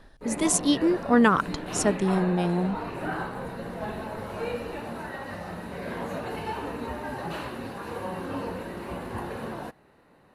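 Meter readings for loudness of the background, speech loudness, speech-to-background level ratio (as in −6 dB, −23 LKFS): −34.5 LKFS, −24.0 LKFS, 10.5 dB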